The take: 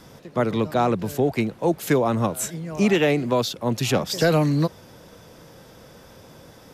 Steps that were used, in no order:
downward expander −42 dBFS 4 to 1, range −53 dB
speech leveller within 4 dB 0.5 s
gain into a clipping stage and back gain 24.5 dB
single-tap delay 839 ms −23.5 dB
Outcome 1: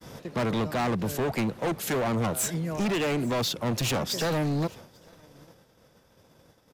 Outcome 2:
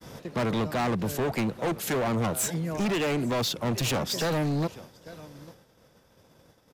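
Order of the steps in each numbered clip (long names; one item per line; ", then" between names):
speech leveller, then gain into a clipping stage and back, then single-tap delay, then downward expander
single-tap delay, then speech leveller, then downward expander, then gain into a clipping stage and back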